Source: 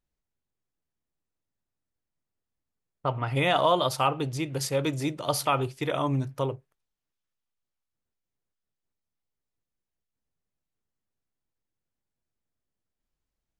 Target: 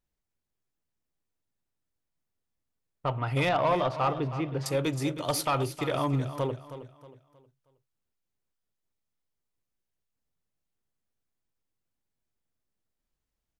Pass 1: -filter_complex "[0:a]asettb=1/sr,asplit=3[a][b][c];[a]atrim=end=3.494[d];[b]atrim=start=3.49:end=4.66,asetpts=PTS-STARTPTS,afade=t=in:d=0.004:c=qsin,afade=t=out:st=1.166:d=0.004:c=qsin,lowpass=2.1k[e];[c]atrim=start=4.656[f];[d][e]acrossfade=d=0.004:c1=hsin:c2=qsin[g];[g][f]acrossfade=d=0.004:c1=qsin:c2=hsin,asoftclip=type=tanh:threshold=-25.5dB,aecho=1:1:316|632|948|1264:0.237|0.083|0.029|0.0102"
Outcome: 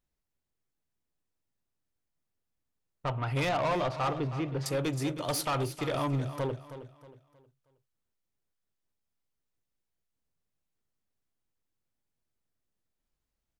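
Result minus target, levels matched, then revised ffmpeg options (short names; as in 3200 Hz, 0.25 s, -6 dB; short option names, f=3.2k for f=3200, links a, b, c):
soft clip: distortion +6 dB
-filter_complex "[0:a]asettb=1/sr,asplit=3[a][b][c];[a]atrim=end=3.494[d];[b]atrim=start=3.49:end=4.66,asetpts=PTS-STARTPTS,afade=t=in:d=0.004:c=qsin,afade=t=out:st=1.166:d=0.004:c=qsin,lowpass=2.1k[e];[c]atrim=start=4.656[f];[d][e]acrossfade=d=0.004:c1=hsin:c2=qsin[g];[g][f]acrossfade=d=0.004:c1=qsin:c2=hsin,asoftclip=type=tanh:threshold=-18.5dB,aecho=1:1:316|632|948|1264:0.237|0.083|0.029|0.0102"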